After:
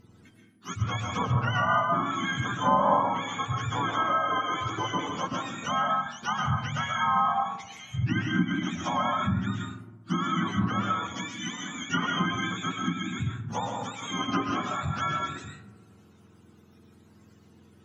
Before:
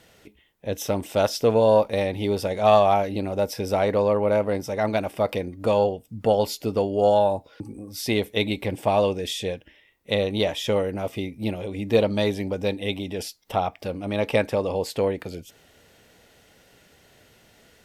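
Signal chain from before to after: spectrum mirrored in octaves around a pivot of 810 Hz; bell 1200 Hz -3.5 dB 1.3 oct; digital reverb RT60 0.67 s, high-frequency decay 0.5×, pre-delay 90 ms, DRR 1 dB; treble ducked by the level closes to 1600 Hz, closed at -17.5 dBFS; on a send: dark delay 64 ms, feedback 82%, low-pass 520 Hz, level -16 dB; on the sum: gain -3 dB

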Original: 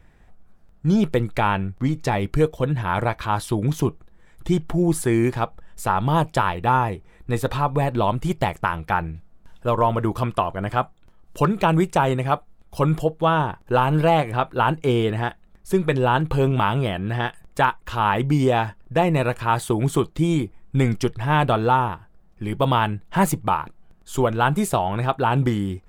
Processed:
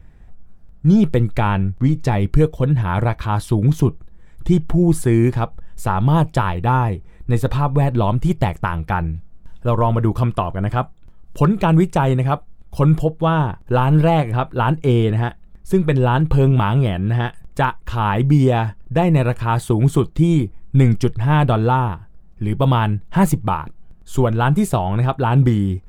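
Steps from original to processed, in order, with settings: low shelf 240 Hz +11.5 dB; gain -1 dB

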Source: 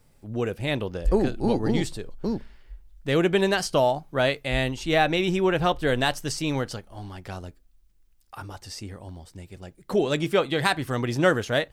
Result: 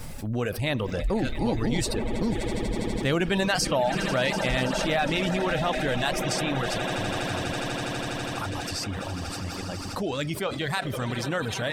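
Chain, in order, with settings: Doppler pass-by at 2.93, 6 m/s, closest 8.6 m; swelling echo 82 ms, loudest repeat 8, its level -17.5 dB; on a send at -16.5 dB: reverb RT60 0.50 s, pre-delay 5 ms; on the sum: reverb removal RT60 0.69 s; bell 390 Hz -6 dB 0.59 oct; fast leveller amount 70%; gain -1.5 dB

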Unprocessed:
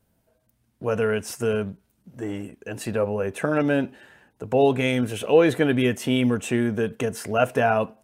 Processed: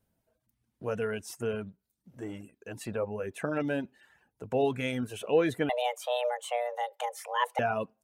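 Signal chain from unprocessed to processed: 5.69–7.59 frequency shift +360 Hz; reverb removal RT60 0.59 s; gain -8 dB

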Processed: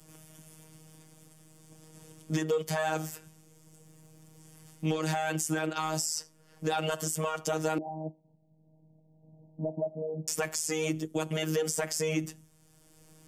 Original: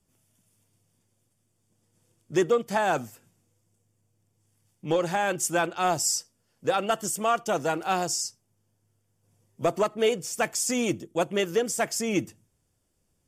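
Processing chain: compressor, threshold -26 dBFS, peak gain reduction 8 dB; limiter -27 dBFS, peak gain reduction 10 dB; robotiser 157 Hz; 7.78–10.28 rippled Chebyshev low-pass 910 Hz, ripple 9 dB; three-band squash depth 40%; gain +8 dB

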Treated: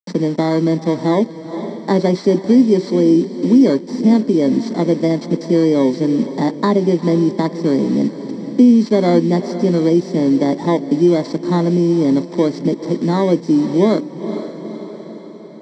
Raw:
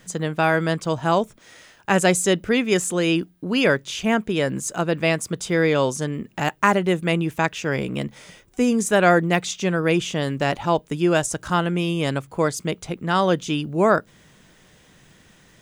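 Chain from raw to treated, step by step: FFT order left unsorted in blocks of 16 samples; high shelf 2300 Hz -11.5 dB; notch 370 Hz, Q 12; in parallel at -2.5 dB: compressor 6:1, threshold -24 dBFS, peak gain reduction 10.5 dB; on the sum: requantised 6-bit, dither none; speaker cabinet 210–6400 Hz, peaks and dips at 260 Hz +8 dB, 380 Hz +6 dB, 770 Hz -9 dB, 1400 Hz -9 dB, 2000 Hz +5 dB; diffused feedback echo 0.469 s, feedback 42%, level -14 dB; reverb RT60 0.20 s, pre-delay 3 ms, DRR 14.5 dB; three-band squash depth 40%; gain -5 dB

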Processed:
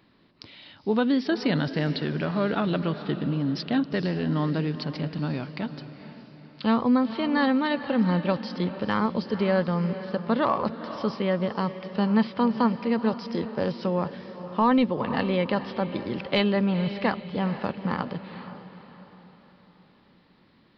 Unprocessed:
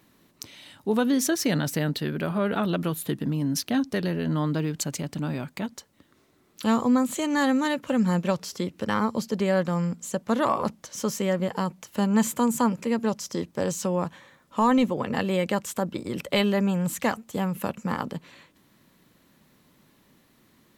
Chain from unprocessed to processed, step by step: downsampling 11025 Hz; diffused feedback echo 0.471 s, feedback 44%, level -12 dB; AAC 96 kbps 48000 Hz

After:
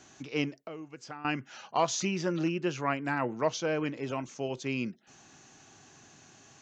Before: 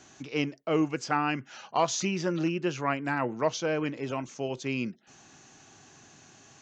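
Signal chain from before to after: 0.56–1.25 compressor 8:1, threshold -39 dBFS, peak gain reduction 17.5 dB; gain -1.5 dB

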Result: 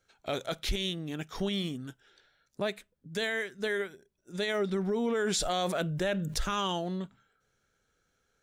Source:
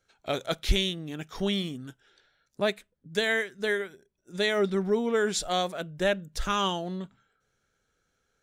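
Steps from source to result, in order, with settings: limiter -22 dBFS, peak gain reduction 9.5 dB; 5.06–6.38 fast leveller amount 70%

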